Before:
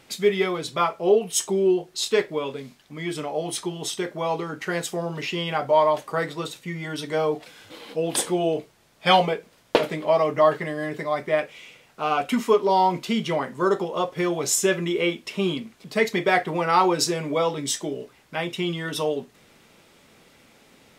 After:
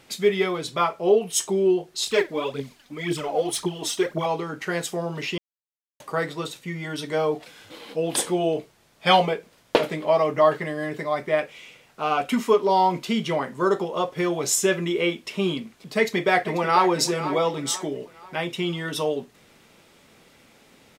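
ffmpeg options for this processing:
-filter_complex "[0:a]asettb=1/sr,asplit=3[a][b][c];[a]atrim=end=2.074[d];[b]atrim=start=2.07:end=4.26,asetpts=PTS-STARTPTS,afade=t=in:d=0.004:c=qsin,afade=t=out:st=2.186:d=0.004:c=qsin,aphaser=in_gain=1:out_gain=1:delay=4.3:decay=0.65:speed=1.9:type=triangular[e];[c]atrim=start=4.256[f];[d][e]acrossfade=d=0.004:c1=hsin:c2=qsin[g];[g][f]acrossfade=d=0.004:c1=qsin:c2=hsin,asplit=2[h][i];[i]afade=t=in:st=15.96:d=0.01,afade=t=out:st=16.89:d=0.01,aecho=0:1:490|980|1470|1960:0.251189|0.100475|0.0401902|0.0160761[j];[h][j]amix=inputs=2:normalize=0,asplit=3[k][l][m];[k]atrim=end=5.38,asetpts=PTS-STARTPTS,afade=t=out:st=5.376:d=0.004:c=hsin[n];[l]atrim=start=5.38:end=6,asetpts=PTS-STARTPTS,volume=0[o];[m]atrim=start=6,asetpts=PTS-STARTPTS,afade=t=in:d=0.004:c=hsin[p];[n][o][p]concat=n=3:v=0:a=1"

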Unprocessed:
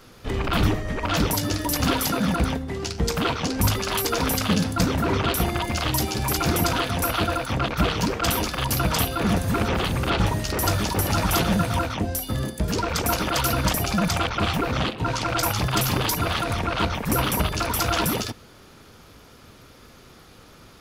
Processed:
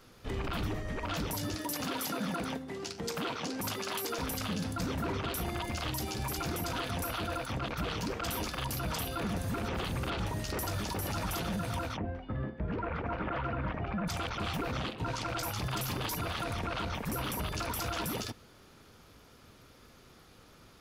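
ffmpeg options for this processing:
-filter_complex "[0:a]asettb=1/sr,asplit=3[a][b][c];[a]atrim=end=1.554[d];[b]atrim=start=1.55:end=4.18,asetpts=PTS-STARTPTS,afade=t=in:d=0.004:c=qsin,afade=t=out:st=2.626:d=0.004:c=qsin,highpass=180[e];[c]atrim=start=4.176[f];[d][e]acrossfade=d=0.004:c1=hsin:c2=qsin[g];[g][f]acrossfade=d=0.004:c1=qsin:c2=hsin,asplit=3[h][i][j];[h]afade=t=out:st=11.96:d=0.02[k];[i]lowpass=f=2.2k:w=0.5412,lowpass=f=2.2k:w=1.3066,afade=t=in:st=11.96:d=0.02,afade=t=out:st=14.07:d=0.02[l];[j]afade=t=in:st=14.07:d=0.02[m];[k][l][m]amix=inputs=3:normalize=0,alimiter=limit=-17.5dB:level=0:latency=1:release=33,volume=-8.5dB"

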